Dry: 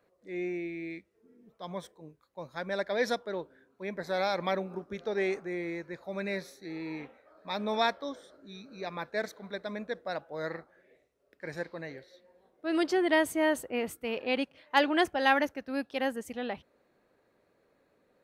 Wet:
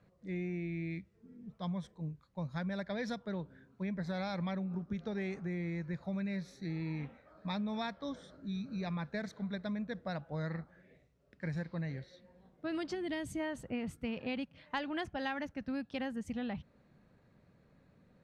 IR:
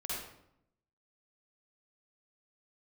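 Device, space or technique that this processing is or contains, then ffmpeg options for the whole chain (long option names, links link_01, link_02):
jukebox: -filter_complex "[0:a]asplit=3[link_01][link_02][link_03];[link_01]afade=type=out:start_time=12.94:duration=0.02[link_04];[link_02]equalizer=frequency=1100:width=0.6:gain=-10.5,afade=type=in:start_time=12.94:duration=0.02,afade=type=out:start_time=13.39:duration=0.02[link_05];[link_03]afade=type=in:start_time=13.39:duration=0.02[link_06];[link_04][link_05][link_06]amix=inputs=3:normalize=0,lowpass=7100,lowshelf=frequency=250:width_type=q:width=1.5:gain=13,acompressor=threshold=-35dB:ratio=6"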